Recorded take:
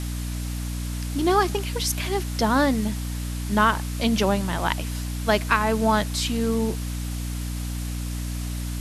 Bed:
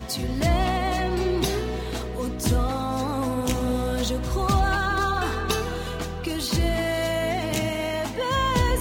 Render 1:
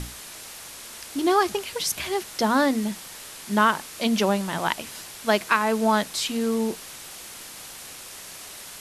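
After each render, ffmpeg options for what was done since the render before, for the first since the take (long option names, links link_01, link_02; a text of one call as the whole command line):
ffmpeg -i in.wav -af "bandreject=frequency=60:width_type=h:width=6,bandreject=frequency=120:width_type=h:width=6,bandreject=frequency=180:width_type=h:width=6,bandreject=frequency=240:width_type=h:width=6,bandreject=frequency=300:width_type=h:width=6" out.wav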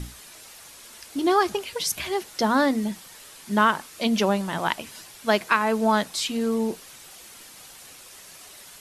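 ffmpeg -i in.wav -af "afftdn=noise_reduction=7:noise_floor=-41" out.wav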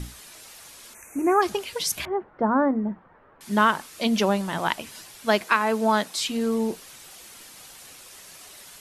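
ffmpeg -i in.wav -filter_complex "[0:a]asplit=3[link_01][link_02][link_03];[link_01]afade=type=out:start_time=0.93:duration=0.02[link_04];[link_02]asuperstop=centerf=4000:order=20:qfactor=1.2,afade=type=in:start_time=0.93:duration=0.02,afade=type=out:start_time=1.41:duration=0.02[link_05];[link_03]afade=type=in:start_time=1.41:duration=0.02[link_06];[link_04][link_05][link_06]amix=inputs=3:normalize=0,asettb=1/sr,asplit=3[link_07][link_08][link_09];[link_07]atrim=end=2.054[link_10];[link_08]atrim=start=2.05:end=3.41,asetpts=PTS-STARTPTS,afade=type=in:duration=0.004:curve=qsin,afade=type=out:start_time=1.356:duration=0.004:curve=qsin,lowpass=frequency=1400:width=0.5412,lowpass=frequency=1400:width=1.3066[link_11];[link_09]atrim=start=3.406[link_12];[link_10][link_11]acrossfade=duration=0.004:curve1=hsin:curve2=qsin[link_13];[link_13][link_12]acrossfade=duration=0.004:curve1=qsin:curve2=hsin,asettb=1/sr,asplit=3[link_14][link_15][link_16];[link_14]atrim=end=5.434[link_17];[link_15]atrim=start=5.43:end=6.2,asetpts=PTS-STARTPTS,afade=type=in:duration=0.004:curve=qsin,afade=type=out:start_time=0.766:duration=0.004:curve=qsin,highpass=180[link_18];[link_16]atrim=start=6.196[link_19];[link_17][link_18]acrossfade=duration=0.004:curve1=hsin:curve2=qsin[link_20];[link_20][link_19]acrossfade=duration=0.004:curve1=qsin:curve2=hsin" out.wav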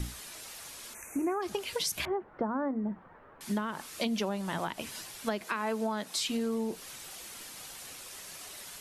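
ffmpeg -i in.wav -filter_complex "[0:a]acrossover=split=450[link_01][link_02];[link_02]alimiter=limit=-16.5dB:level=0:latency=1:release=103[link_03];[link_01][link_03]amix=inputs=2:normalize=0,acompressor=threshold=-29dB:ratio=6" out.wav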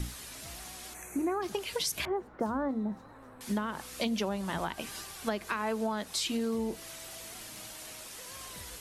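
ffmpeg -i in.wav -i bed.wav -filter_complex "[1:a]volume=-29dB[link_01];[0:a][link_01]amix=inputs=2:normalize=0" out.wav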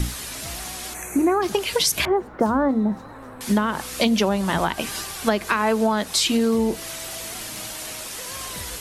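ffmpeg -i in.wav -af "volume=12dB" out.wav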